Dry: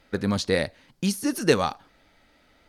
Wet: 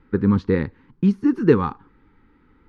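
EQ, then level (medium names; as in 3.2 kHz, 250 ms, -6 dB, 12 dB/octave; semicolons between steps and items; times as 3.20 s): Butterworth band-stop 640 Hz, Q 1.3; low-pass 1 kHz 12 dB/octave; +8.0 dB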